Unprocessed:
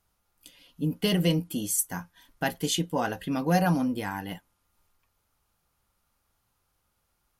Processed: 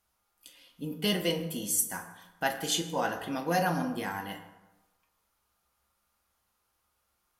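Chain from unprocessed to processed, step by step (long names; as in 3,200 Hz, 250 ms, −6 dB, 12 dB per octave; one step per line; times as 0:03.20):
low-shelf EQ 280 Hz −10 dB
convolution reverb RT60 1.1 s, pre-delay 7 ms, DRR 3.5 dB
level −1.5 dB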